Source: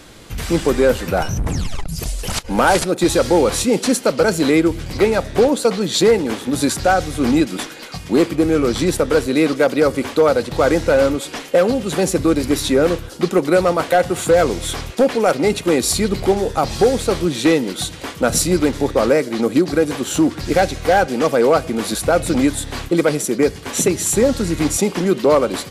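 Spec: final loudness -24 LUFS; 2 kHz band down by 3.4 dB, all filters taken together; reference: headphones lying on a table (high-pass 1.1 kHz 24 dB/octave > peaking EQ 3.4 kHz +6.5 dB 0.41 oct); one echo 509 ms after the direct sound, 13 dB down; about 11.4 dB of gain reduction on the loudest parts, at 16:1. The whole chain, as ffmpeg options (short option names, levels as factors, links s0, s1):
-af "equalizer=f=2000:t=o:g=-5,acompressor=threshold=0.0891:ratio=16,highpass=f=1100:w=0.5412,highpass=f=1100:w=1.3066,equalizer=f=3400:t=o:w=0.41:g=6.5,aecho=1:1:509:0.224,volume=2.24"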